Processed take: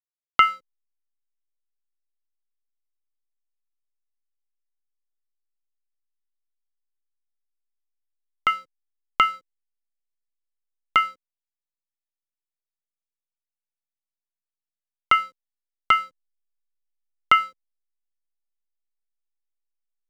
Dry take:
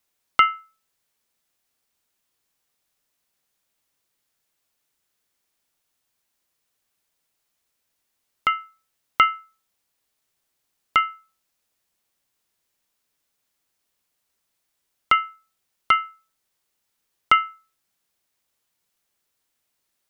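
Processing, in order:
0:08.50–0:09.34: dynamic equaliser 1,800 Hz, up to −5 dB, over −32 dBFS, Q 2
slack as between gear wheels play −38 dBFS

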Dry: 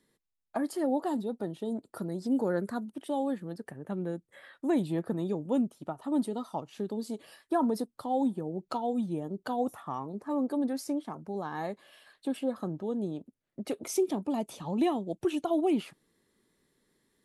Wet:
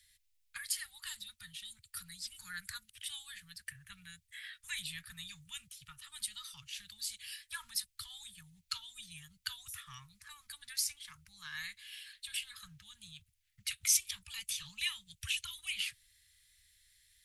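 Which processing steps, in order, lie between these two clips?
inverse Chebyshev band-stop filter 250–690 Hz, stop band 70 dB
level +10.5 dB

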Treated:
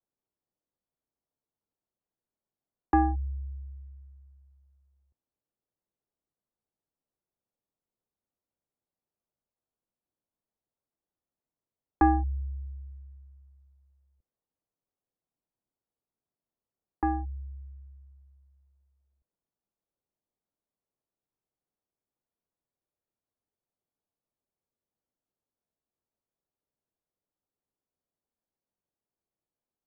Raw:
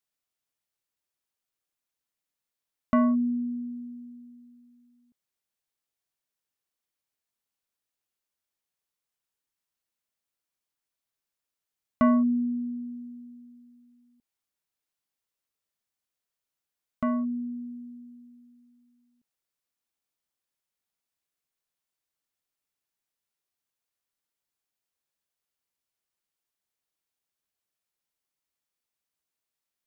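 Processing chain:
single-sideband voice off tune −310 Hz 330–2,400 Hz
low-pass that shuts in the quiet parts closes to 680 Hz
level +5 dB

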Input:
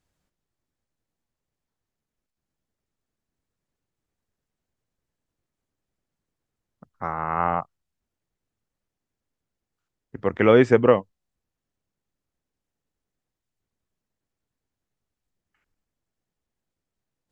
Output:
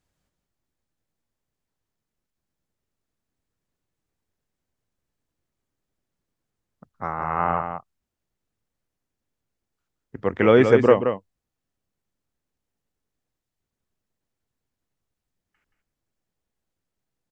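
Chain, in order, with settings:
single-tap delay 176 ms −7 dB

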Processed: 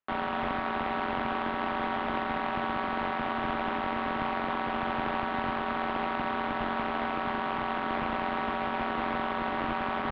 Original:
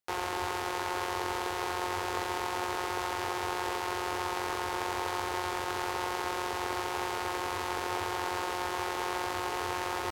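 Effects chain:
each half-wave held at its own peak
single-sideband voice off tune −130 Hz 150–3,500 Hz
parametric band 1,200 Hz +7 dB 0.94 octaves
level −4 dB

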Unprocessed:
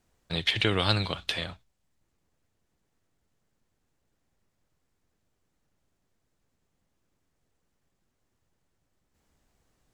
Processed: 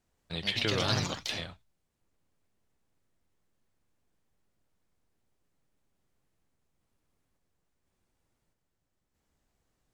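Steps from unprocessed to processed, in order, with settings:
delay with pitch and tempo change per echo 172 ms, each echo +3 semitones, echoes 3
level −6 dB

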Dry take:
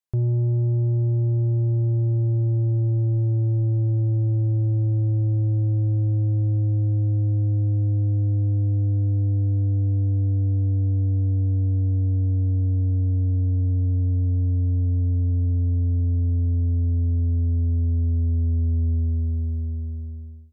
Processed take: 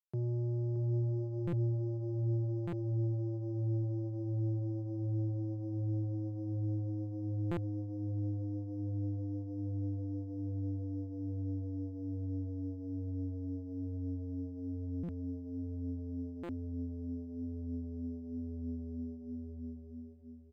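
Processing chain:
running median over 41 samples
high-pass filter 140 Hz 24 dB per octave
on a send: repeating echo 623 ms, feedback 34%, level −8 dB
on the sum: buffer that repeats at 0:01.47/0:02.67/0:07.51/0:15.03/0:16.43, samples 256, times 9
linearly interpolated sample-rate reduction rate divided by 8×
level −7 dB

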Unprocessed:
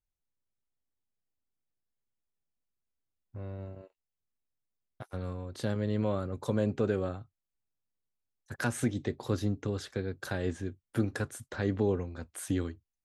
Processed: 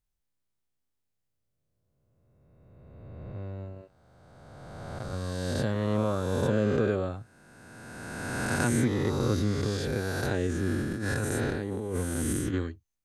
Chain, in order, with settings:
peak hold with a rise ahead of every peak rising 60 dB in 2.32 s
0:10.47–0:12.54: compressor whose output falls as the input rises −31 dBFS, ratio −1
low-shelf EQ 140 Hz +3.5 dB

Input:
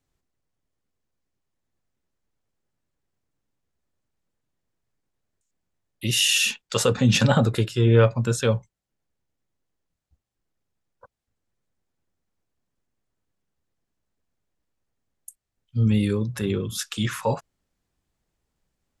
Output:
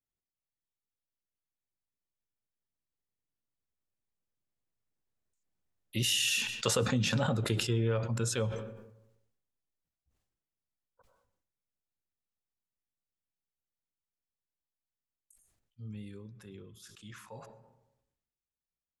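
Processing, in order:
source passing by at 0:06.73, 5 m/s, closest 4 metres
downward compressor 6 to 1, threshold −24 dBFS, peak gain reduction 10 dB
on a send at −22.5 dB: convolution reverb RT60 0.95 s, pre-delay 78 ms
on the sum: level that may fall only so fast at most 56 dB per second
level −2.5 dB

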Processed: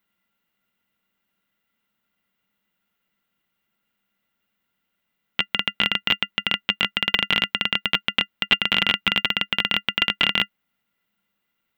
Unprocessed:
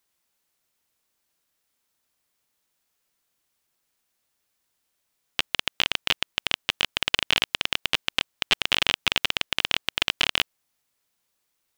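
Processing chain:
flat-topped bell 7,500 Hz −12 dB
hollow resonant body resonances 200/1,400/2,000/2,800 Hz, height 15 dB, ringing for 75 ms

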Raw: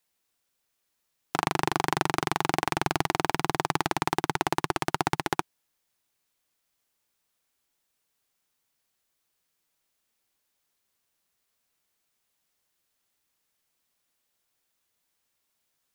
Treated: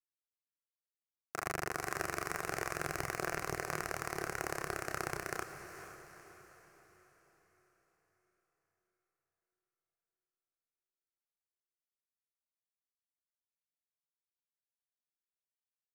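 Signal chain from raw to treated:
phaser with its sweep stopped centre 890 Hz, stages 6
multi-voice chorus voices 4, 1.1 Hz, delay 30 ms, depth 3 ms
power curve on the samples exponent 1.4
on a send: feedback delay with all-pass diffusion 463 ms, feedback 48%, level −10 dB

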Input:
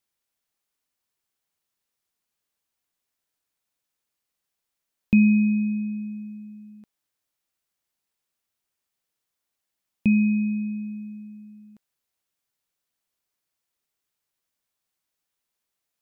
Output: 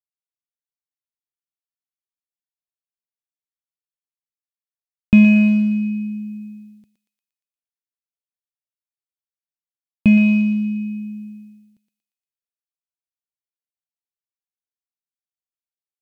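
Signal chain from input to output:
downward expander −40 dBFS
drawn EQ curve 110 Hz 0 dB, 1,200 Hz −14 dB, 2,600 Hz −3 dB
in parallel at −7.5 dB: hard clipping −23.5 dBFS, distortion −10 dB
on the sum: feedback echo with a high-pass in the loop 117 ms, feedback 63%, high-pass 890 Hz, level −5 dB
level +9 dB

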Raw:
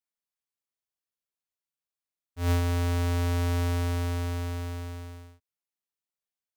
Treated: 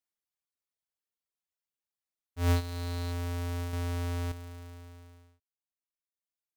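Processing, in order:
reverb reduction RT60 1.8 s
0:02.56–0:03.12: parametric band 4,100 Hz +12 dB 0.21 octaves
0:03.73–0:04.32: leveller curve on the samples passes 5

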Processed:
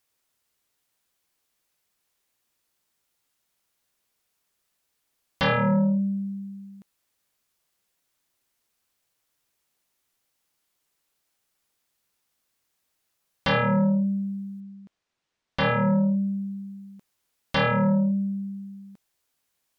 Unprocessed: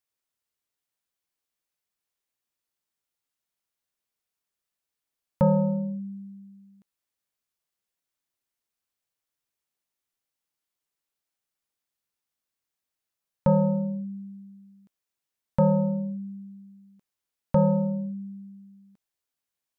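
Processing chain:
sine wavefolder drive 12 dB, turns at −13.5 dBFS
0:14.60–0:16.04: high-frequency loss of the air 110 metres
level −5 dB

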